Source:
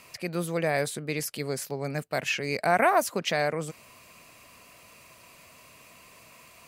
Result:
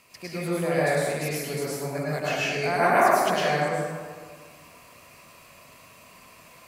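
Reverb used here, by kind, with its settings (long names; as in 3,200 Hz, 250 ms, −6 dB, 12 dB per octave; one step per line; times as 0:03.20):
dense smooth reverb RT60 1.7 s, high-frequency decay 0.5×, pre-delay 90 ms, DRR −8.5 dB
level −6 dB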